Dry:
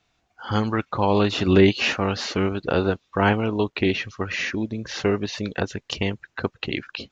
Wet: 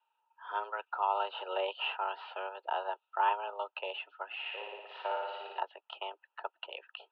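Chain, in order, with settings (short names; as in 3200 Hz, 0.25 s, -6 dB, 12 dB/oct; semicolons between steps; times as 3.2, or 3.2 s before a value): vowel filter a; mistuned SSB +190 Hz 160–3500 Hz; 4.4–5.6 flutter echo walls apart 9.8 m, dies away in 1.3 s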